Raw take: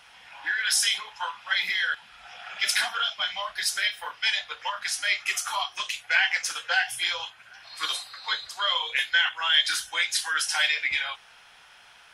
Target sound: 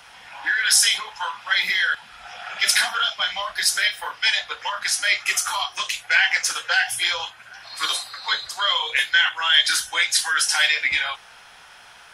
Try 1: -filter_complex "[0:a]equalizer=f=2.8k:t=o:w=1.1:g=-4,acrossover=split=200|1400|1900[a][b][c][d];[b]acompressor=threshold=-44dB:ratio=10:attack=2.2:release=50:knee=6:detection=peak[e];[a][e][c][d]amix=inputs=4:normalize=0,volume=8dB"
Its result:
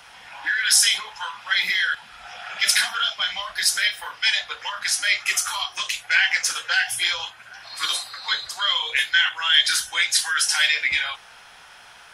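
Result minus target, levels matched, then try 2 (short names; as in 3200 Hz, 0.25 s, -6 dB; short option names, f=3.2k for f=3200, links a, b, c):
compressor: peak gain reduction +8.5 dB
-filter_complex "[0:a]equalizer=f=2.8k:t=o:w=1.1:g=-4,acrossover=split=200|1400|1900[a][b][c][d];[b]acompressor=threshold=-34.5dB:ratio=10:attack=2.2:release=50:knee=6:detection=peak[e];[a][e][c][d]amix=inputs=4:normalize=0,volume=8dB"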